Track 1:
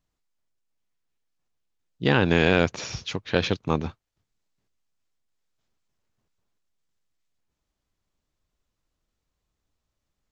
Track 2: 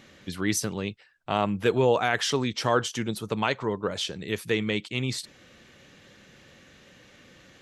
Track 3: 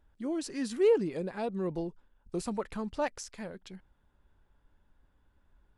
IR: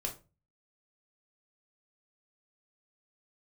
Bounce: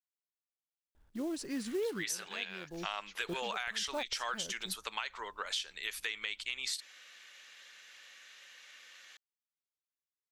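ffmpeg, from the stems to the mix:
-filter_complex "[0:a]volume=-18dB,asplit=2[link_01][link_02];[1:a]adelay=1550,volume=2dB[link_03];[2:a]acrusher=bits=5:mode=log:mix=0:aa=0.000001,adelay=950,volume=-1dB[link_04];[link_02]apad=whole_len=296791[link_05];[link_04][link_05]sidechaincompress=threshold=-50dB:ratio=4:attack=5.1:release=177[link_06];[link_01][link_03]amix=inputs=2:normalize=0,highpass=1500,alimiter=limit=-17.5dB:level=0:latency=1:release=151,volume=0dB[link_07];[link_06][link_07]amix=inputs=2:normalize=0,acompressor=threshold=-33dB:ratio=6"

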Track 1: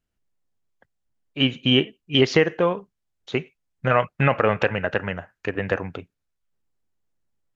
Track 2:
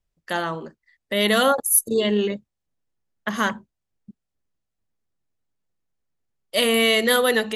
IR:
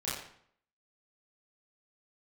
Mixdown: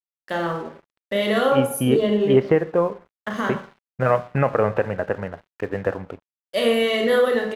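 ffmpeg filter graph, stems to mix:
-filter_complex "[0:a]lowpass=1700,adelay=150,volume=-1.5dB,asplit=2[link_01][link_02];[link_02]volume=-17.5dB[link_03];[1:a]highshelf=frequency=4200:gain=-10.5,alimiter=limit=-14.5dB:level=0:latency=1:release=69,volume=-3dB,asplit=2[link_04][link_05];[link_05]volume=-3.5dB[link_06];[2:a]atrim=start_sample=2205[link_07];[link_03][link_06]amix=inputs=2:normalize=0[link_08];[link_08][link_07]afir=irnorm=-1:irlink=0[link_09];[link_01][link_04][link_09]amix=inputs=3:normalize=0,equalizer=frequency=530:width_type=o:width=1.1:gain=3,aeval=exprs='sgn(val(0))*max(abs(val(0))-0.00631,0)':channel_layout=same,adynamicequalizer=threshold=0.0158:dfrequency=1700:dqfactor=0.7:tfrequency=1700:tqfactor=0.7:attack=5:release=100:ratio=0.375:range=2.5:mode=cutabove:tftype=highshelf"

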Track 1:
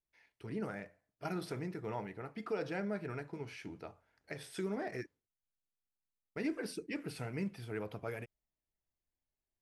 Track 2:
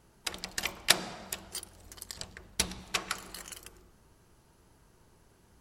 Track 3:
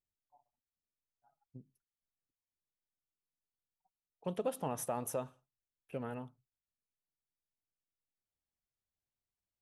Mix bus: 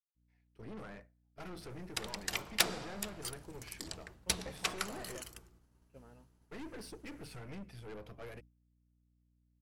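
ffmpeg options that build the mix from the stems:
ffmpeg -i stem1.wav -i stem2.wav -i stem3.wav -filter_complex "[0:a]aeval=exprs='(tanh(141*val(0)+0.55)-tanh(0.55))/141':channel_layout=same,aeval=exprs='val(0)+0.00126*(sin(2*PI*60*n/s)+sin(2*PI*2*60*n/s)/2+sin(2*PI*3*60*n/s)/3+sin(2*PI*4*60*n/s)/4+sin(2*PI*5*60*n/s)/5)':channel_layout=same,adelay=150,volume=-0.5dB[link_01];[1:a]adelay=1700,volume=-3.5dB[link_02];[2:a]volume=-15dB[link_03];[link_01][link_02][link_03]amix=inputs=3:normalize=0,agate=range=-33dB:threshold=-50dB:ratio=3:detection=peak,aeval=exprs='0.2*(abs(mod(val(0)/0.2+3,4)-2)-1)':channel_layout=same" out.wav

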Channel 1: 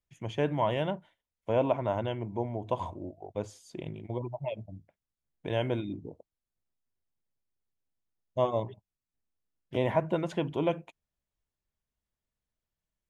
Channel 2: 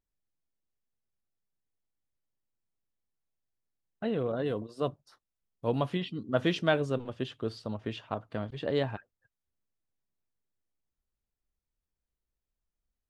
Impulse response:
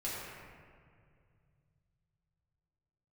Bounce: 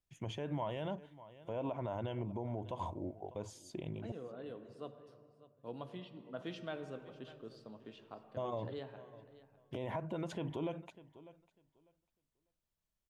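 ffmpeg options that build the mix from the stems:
-filter_complex "[0:a]alimiter=limit=-22dB:level=0:latency=1:release=180,volume=-1.5dB,asplit=3[link_01][link_02][link_03];[link_01]atrim=end=4.12,asetpts=PTS-STARTPTS,afade=type=out:start_time=4.116:duration=0.004:curve=hsin[link_04];[link_02]atrim=start=4.12:end=6.57,asetpts=PTS-STARTPTS,volume=0[link_05];[link_03]atrim=start=6.57,asetpts=PTS-STARTPTS,afade=type=in:duration=0.004:curve=hsin[link_06];[link_04][link_05][link_06]concat=n=3:v=0:a=1,asplit=2[link_07][link_08];[link_08]volume=-22dB[link_09];[1:a]highpass=150,volume=-17dB,asplit=3[link_10][link_11][link_12];[link_11]volume=-10dB[link_13];[link_12]volume=-15.5dB[link_14];[2:a]atrim=start_sample=2205[link_15];[link_13][link_15]afir=irnorm=-1:irlink=0[link_16];[link_09][link_14]amix=inputs=2:normalize=0,aecho=0:1:598|1196|1794:1|0.17|0.0289[link_17];[link_07][link_10][link_16][link_17]amix=inputs=4:normalize=0,equalizer=frequency=2000:width=2.6:gain=-3,alimiter=level_in=5.5dB:limit=-24dB:level=0:latency=1:release=53,volume=-5.5dB"

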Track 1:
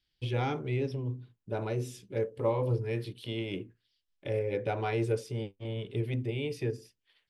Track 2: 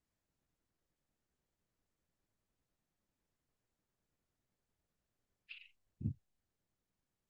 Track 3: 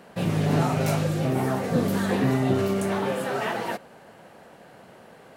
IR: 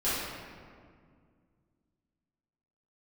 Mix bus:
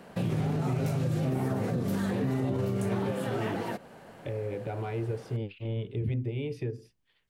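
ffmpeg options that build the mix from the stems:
-filter_complex "[0:a]highshelf=frequency=3500:gain=-9.5,alimiter=level_in=3dB:limit=-24dB:level=0:latency=1:release=143,volume=-3dB,volume=0dB[link_01];[1:a]volume=0dB[link_02];[2:a]alimiter=limit=-18.5dB:level=0:latency=1:release=427,volume=-2dB[link_03];[link_01][link_02][link_03]amix=inputs=3:normalize=0,acrossover=split=440[link_04][link_05];[link_05]acompressor=threshold=-35dB:ratio=6[link_06];[link_04][link_06]amix=inputs=2:normalize=0,lowshelf=frequency=250:gain=5.5,alimiter=limit=-21.5dB:level=0:latency=1:release=45"

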